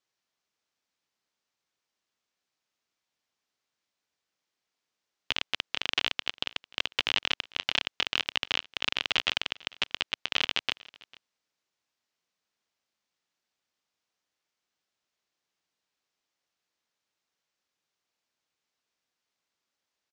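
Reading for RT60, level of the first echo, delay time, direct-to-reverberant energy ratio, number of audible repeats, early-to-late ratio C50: none, -23.5 dB, 0.448 s, none, 1, none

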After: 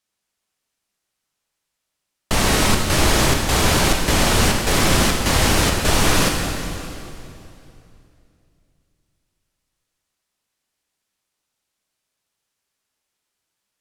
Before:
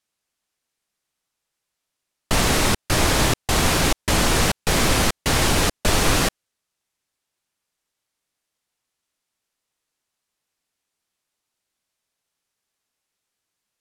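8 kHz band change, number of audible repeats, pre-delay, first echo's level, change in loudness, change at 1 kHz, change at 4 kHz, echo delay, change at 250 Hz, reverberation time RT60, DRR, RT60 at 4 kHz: +2.0 dB, none, 6 ms, none, +2.0 dB, +2.5 dB, +2.5 dB, none, +3.0 dB, 2.8 s, 1.5 dB, 2.5 s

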